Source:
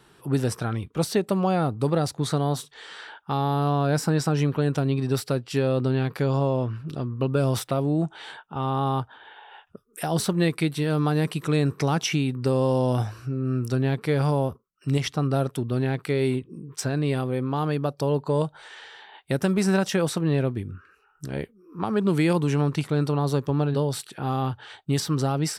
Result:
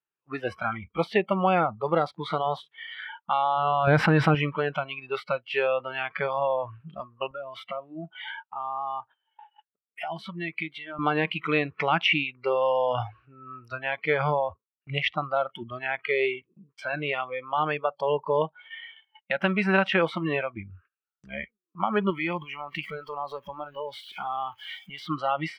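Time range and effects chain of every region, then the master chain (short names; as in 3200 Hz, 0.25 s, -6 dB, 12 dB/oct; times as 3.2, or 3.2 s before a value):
3.87–4.35 low shelf 300 Hz +7 dB + fast leveller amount 70%
7.31–10.99 HPF 91 Hz + compressor 2:1, threshold -33 dBFS
22.1–25.07 switching spikes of -29 dBFS + compressor 2.5:1, threshold -27 dBFS
whole clip: spectral noise reduction 22 dB; gate -52 dBFS, range -22 dB; EQ curve 160 Hz 0 dB, 2700 Hz +15 dB, 6900 Hz -24 dB; gain -5 dB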